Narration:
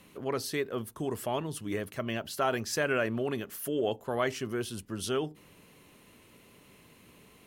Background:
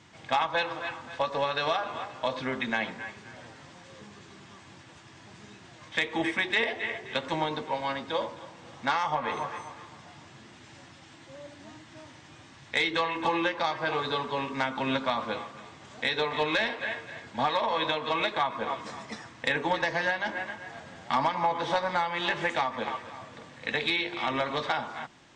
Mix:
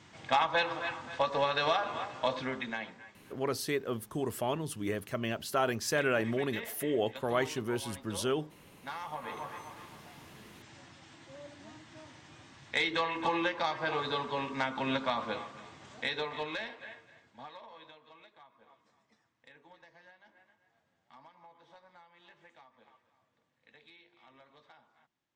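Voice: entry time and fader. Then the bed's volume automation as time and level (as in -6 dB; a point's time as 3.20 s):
3.15 s, -0.5 dB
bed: 2.30 s -1 dB
3.16 s -15.5 dB
8.81 s -15.5 dB
9.81 s -3.5 dB
15.88 s -3.5 dB
18.30 s -30.5 dB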